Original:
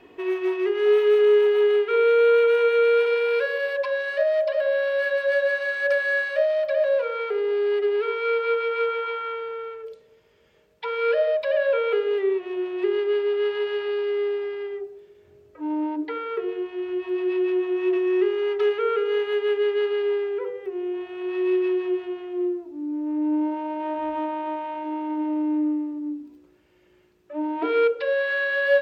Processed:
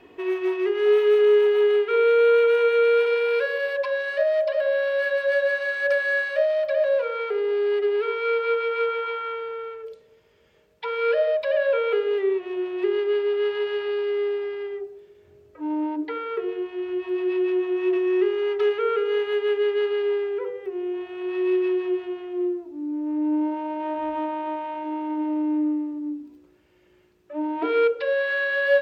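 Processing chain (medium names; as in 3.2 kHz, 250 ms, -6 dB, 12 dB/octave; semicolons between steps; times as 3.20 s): peaking EQ 81 Hz +2 dB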